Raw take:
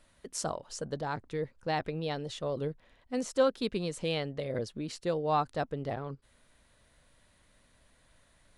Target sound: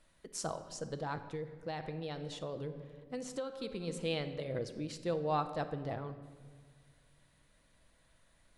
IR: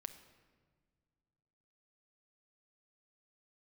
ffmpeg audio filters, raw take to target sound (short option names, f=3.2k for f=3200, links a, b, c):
-filter_complex "[1:a]atrim=start_sample=2205[a];[0:a][a]afir=irnorm=-1:irlink=0,asplit=3[b][c][d];[b]afade=t=out:st=1.27:d=0.02[e];[c]acompressor=threshold=-36dB:ratio=10,afade=t=in:st=1.27:d=0.02,afade=t=out:st=3.87:d=0.02[f];[d]afade=t=in:st=3.87:d=0.02[g];[e][f][g]amix=inputs=3:normalize=0"